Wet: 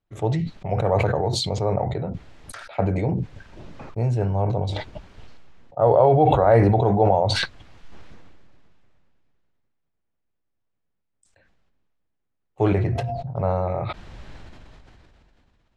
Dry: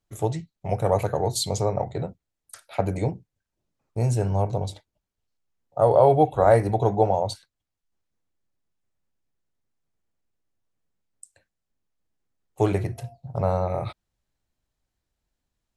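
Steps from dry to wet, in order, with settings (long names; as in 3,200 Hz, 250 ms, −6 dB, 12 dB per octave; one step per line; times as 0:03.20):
low-pass filter 3,100 Hz 12 dB per octave
level that may fall only so fast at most 21 dB per second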